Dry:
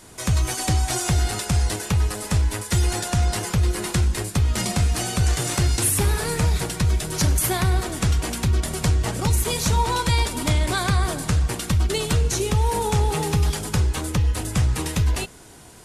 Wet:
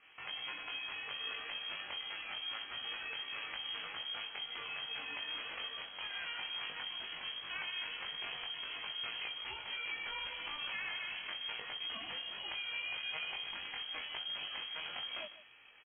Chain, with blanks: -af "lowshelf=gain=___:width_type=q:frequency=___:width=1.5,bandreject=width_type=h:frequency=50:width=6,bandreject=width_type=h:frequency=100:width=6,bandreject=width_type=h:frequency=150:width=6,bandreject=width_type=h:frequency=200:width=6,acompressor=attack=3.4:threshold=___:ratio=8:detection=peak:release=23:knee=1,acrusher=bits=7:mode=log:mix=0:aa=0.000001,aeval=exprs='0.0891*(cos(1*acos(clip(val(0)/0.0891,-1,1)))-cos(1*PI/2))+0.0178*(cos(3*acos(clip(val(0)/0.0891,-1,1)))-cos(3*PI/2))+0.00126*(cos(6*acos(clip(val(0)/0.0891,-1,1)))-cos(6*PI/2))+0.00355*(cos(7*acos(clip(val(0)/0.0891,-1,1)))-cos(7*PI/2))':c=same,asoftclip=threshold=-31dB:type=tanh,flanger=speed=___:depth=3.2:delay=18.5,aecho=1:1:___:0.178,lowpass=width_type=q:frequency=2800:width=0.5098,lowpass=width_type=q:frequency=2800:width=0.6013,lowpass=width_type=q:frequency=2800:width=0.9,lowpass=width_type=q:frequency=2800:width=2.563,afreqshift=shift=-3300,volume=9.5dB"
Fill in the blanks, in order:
-6.5, 530, -36dB, 0.77, 150